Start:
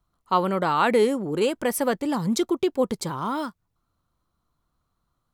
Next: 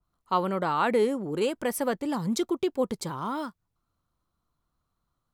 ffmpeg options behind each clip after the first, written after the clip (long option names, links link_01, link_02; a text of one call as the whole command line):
ffmpeg -i in.wav -af "adynamicequalizer=threshold=0.0224:dfrequency=2000:dqfactor=0.7:tfrequency=2000:tqfactor=0.7:attack=5:release=100:ratio=0.375:range=2:mode=cutabove:tftype=highshelf,volume=-4dB" out.wav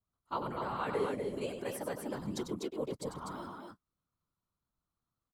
ffmpeg -i in.wav -af "afftfilt=real='hypot(re,im)*cos(2*PI*random(0))':imag='hypot(re,im)*sin(2*PI*random(1))':win_size=512:overlap=0.75,aecho=1:1:96.21|247.8:0.398|0.631,volume=-6dB" out.wav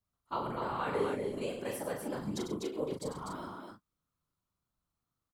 ffmpeg -i in.wav -filter_complex "[0:a]asplit=2[link_01][link_02];[link_02]adelay=39,volume=-5dB[link_03];[link_01][link_03]amix=inputs=2:normalize=0" out.wav